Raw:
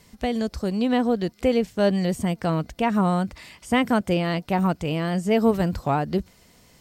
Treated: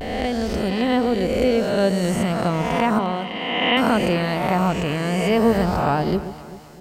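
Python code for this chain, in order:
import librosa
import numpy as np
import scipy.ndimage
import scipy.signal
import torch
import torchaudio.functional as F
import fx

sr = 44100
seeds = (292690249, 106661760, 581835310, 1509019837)

y = fx.spec_swells(x, sr, rise_s=1.68)
y = fx.cabinet(y, sr, low_hz=200.0, low_slope=12, high_hz=3700.0, hz=(210.0, 1400.0, 2800.0), db=(-7, -9, 9), at=(2.98, 3.78))
y = fx.vibrato(y, sr, rate_hz=0.39, depth_cents=36.0)
y = fx.echo_alternate(y, sr, ms=129, hz=900.0, feedback_pct=69, wet_db=-11)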